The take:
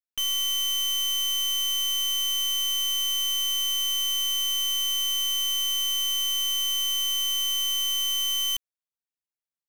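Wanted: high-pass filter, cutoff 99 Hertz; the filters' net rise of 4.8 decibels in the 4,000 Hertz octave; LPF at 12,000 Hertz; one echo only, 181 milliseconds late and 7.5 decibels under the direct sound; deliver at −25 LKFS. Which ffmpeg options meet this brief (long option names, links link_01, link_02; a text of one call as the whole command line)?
ffmpeg -i in.wav -af "highpass=99,lowpass=12000,equalizer=frequency=4000:width_type=o:gain=7.5,aecho=1:1:181:0.422,volume=-4.5dB" out.wav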